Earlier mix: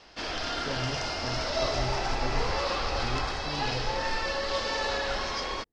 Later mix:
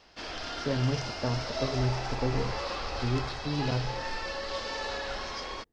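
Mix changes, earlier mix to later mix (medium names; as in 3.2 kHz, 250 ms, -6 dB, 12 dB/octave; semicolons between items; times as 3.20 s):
speech +7.0 dB; background -5.0 dB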